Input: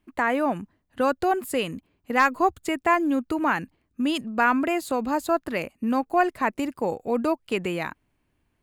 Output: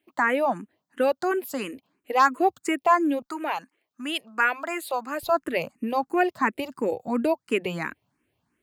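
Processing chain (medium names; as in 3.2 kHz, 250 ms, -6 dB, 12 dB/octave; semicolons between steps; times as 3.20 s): high-pass 240 Hz 12 dB/octave, from 3.22 s 560 Hz, from 5.23 s 110 Hz; barber-pole phaser +2.9 Hz; trim +3 dB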